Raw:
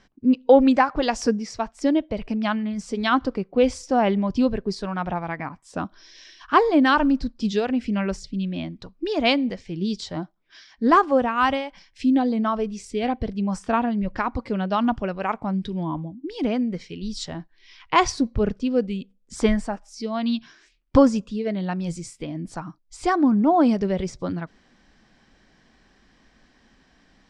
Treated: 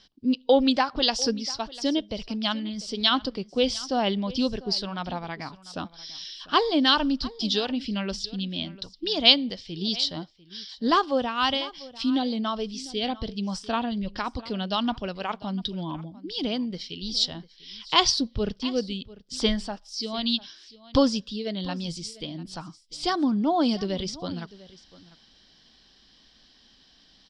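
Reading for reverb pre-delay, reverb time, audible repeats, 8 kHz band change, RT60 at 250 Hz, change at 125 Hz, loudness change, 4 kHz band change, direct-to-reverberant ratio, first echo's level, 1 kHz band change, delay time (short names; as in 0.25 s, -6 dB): none, none, 1, +2.5 dB, none, -5.5 dB, -3.0 dB, +9.5 dB, none, -19.5 dB, -5.5 dB, 0.696 s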